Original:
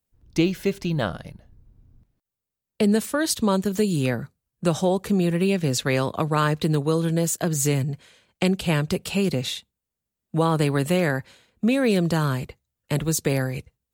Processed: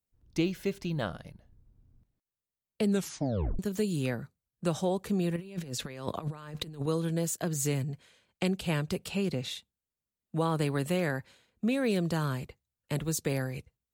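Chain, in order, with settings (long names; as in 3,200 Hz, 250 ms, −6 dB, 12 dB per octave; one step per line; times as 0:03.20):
0:02.89: tape stop 0.70 s
0:05.36–0:06.86: compressor whose output falls as the input rises −28 dBFS, ratio −0.5
0:09.08–0:09.51: high-shelf EQ 7,900 Hz −7.5 dB
level −8 dB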